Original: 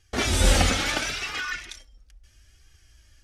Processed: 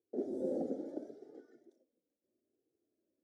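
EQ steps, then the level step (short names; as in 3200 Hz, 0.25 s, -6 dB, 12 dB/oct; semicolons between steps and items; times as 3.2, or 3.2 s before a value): HPF 280 Hz 24 dB/oct; inverse Chebyshev low-pass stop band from 1000 Hz, stop band 40 dB; -4.0 dB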